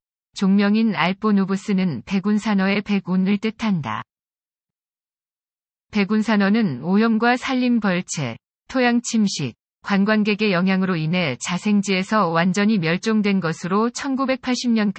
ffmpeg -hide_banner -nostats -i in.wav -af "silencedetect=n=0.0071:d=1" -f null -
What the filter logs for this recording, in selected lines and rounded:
silence_start: 4.02
silence_end: 5.93 | silence_duration: 1.91